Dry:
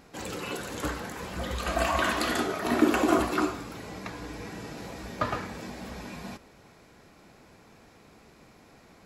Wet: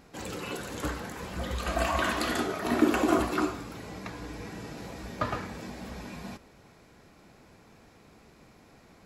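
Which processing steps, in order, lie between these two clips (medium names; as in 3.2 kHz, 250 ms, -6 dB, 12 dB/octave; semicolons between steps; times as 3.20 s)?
bass shelf 220 Hz +3 dB; trim -2 dB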